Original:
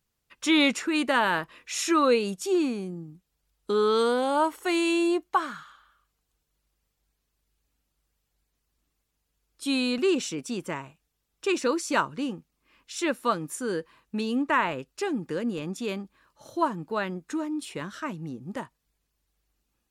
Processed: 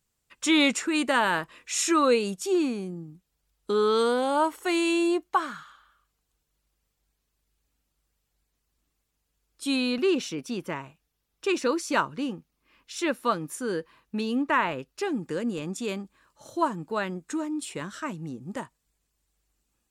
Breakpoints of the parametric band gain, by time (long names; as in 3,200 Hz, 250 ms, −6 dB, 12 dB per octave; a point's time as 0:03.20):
parametric band 7,800 Hz 0.43 octaves
+7.5 dB
from 0:02.28 +1.5 dB
from 0:09.76 −9 dB
from 0:10.80 −3 dB
from 0:15.12 +7.5 dB